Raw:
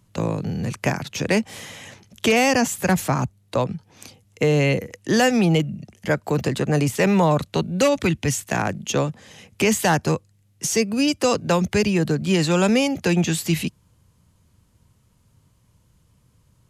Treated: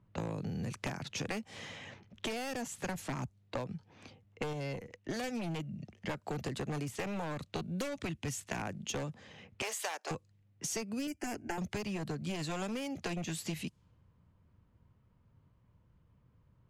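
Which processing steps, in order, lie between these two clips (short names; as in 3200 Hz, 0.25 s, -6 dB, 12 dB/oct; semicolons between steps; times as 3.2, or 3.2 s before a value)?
one-sided fold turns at -16.5 dBFS; 4.53–5.24 tube stage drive 14 dB, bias 0.8; 9.62–10.11 HPF 490 Hz 24 dB/oct; 11.07–11.58 fixed phaser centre 760 Hz, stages 8; compressor 12:1, threshold -27 dBFS, peak gain reduction 13 dB; low-pass opened by the level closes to 1800 Hz, open at -27 dBFS; gain -7 dB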